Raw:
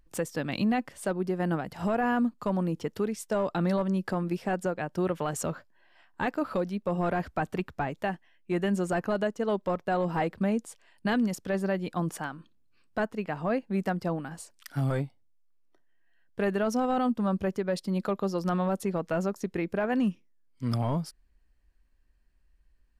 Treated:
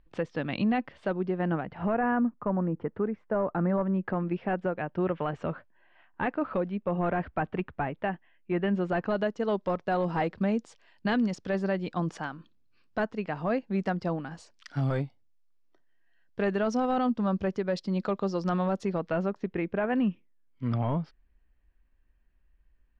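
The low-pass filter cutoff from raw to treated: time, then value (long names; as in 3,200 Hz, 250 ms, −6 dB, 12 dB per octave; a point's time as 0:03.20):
low-pass filter 24 dB per octave
0:01.20 3,700 Hz
0:02.40 1,800 Hz
0:03.70 1,800 Hz
0:04.31 2,900 Hz
0:08.59 2,900 Hz
0:09.45 5,800 Hz
0:18.88 5,800 Hz
0:19.39 3,200 Hz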